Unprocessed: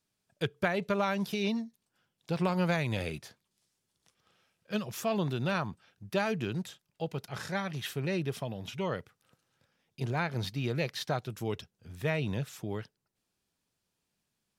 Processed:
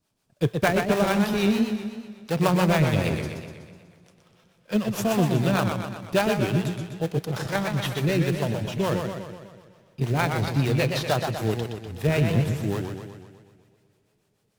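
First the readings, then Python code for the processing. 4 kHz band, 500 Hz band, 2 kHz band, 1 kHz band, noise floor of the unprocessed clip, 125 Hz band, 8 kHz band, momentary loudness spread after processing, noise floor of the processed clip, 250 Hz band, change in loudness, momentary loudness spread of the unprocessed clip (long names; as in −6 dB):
+7.5 dB, +8.5 dB, +7.0 dB, +8.0 dB, −83 dBFS, +10.5 dB, +10.0 dB, 11 LU, −69 dBFS, +10.0 dB, +9.0 dB, 10 LU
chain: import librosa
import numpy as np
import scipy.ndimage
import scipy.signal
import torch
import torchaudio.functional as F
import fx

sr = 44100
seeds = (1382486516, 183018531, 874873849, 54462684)

p1 = fx.sample_hold(x, sr, seeds[0], rate_hz=2200.0, jitter_pct=20)
p2 = x + (p1 * 10.0 ** (-4.0 / 20.0))
p3 = fx.rev_double_slope(p2, sr, seeds[1], early_s=0.25, late_s=4.1, knee_db=-19, drr_db=18.5)
p4 = fx.harmonic_tremolo(p3, sr, hz=6.7, depth_pct=70, crossover_hz=470.0)
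p5 = fx.echo_warbled(p4, sr, ms=124, feedback_pct=58, rate_hz=2.8, cents=138, wet_db=-5.5)
y = p5 * 10.0 ** (7.5 / 20.0)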